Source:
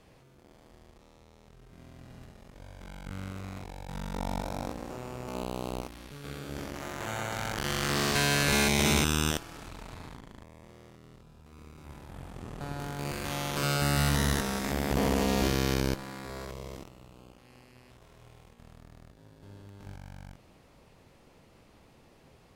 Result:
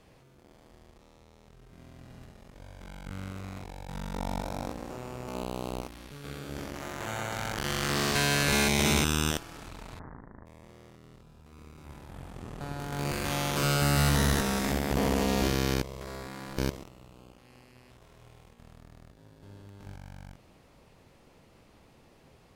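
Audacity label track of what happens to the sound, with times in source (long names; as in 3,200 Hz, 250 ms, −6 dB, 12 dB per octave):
9.990000	10.460000	Butterworth low-pass 1,900 Hz 72 dB per octave
12.920000	14.780000	leveller curve on the samples passes 1
15.820000	16.700000	reverse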